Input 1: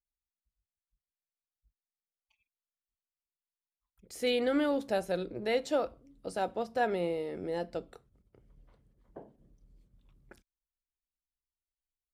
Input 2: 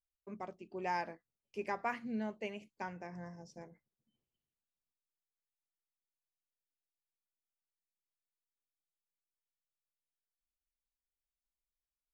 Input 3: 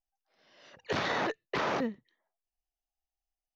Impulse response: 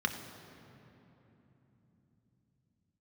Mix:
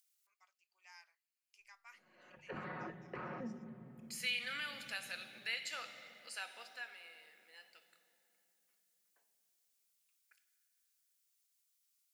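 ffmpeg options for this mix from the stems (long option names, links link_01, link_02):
-filter_complex "[0:a]highpass=frequency=2300:width_type=q:width=2.4,volume=-5dB,afade=type=out:start_time=6.47:duration=0.4:silence=0.251189,asplit=2[link_01][link_02];[link_02]volume=-4.5dB[link_03];[1:a]acompressor=mode=upward:threshold=-51dB:ratio=2.5,highpass=frequency=1300:width=0.5412,highpass=frequency=1300:width=1.3066,bandreject=frequency=1700:width=12,volume=-15.5dB[link_04];[2:a]lowpass=frequency=2700:width=0.5412,lowpass=frequency=2700:width=1.3066,aecho=1:1:5.5:0.65,acompressor=threshold=-38dB:ratio=4,adelay=1600,volume=-10dB,asplit=2[link_05][link_06];[link_06]volume=-8dB[link_07];[3:a]atrim=start_sample=2205[link_08];[link_03][link_07]amix=inputs=2:normalize=0[link_09];[link_09][link_08]afir=irnorm=-1:irlink=0[link_10];[link_01][link_04][link_05][link_10]amix=inputs=4:normalize=0,bass=frequency=250:gain=11,treble=frequency=4000:gain=10,acompressor=threshold=-42dB:ratio=1.5"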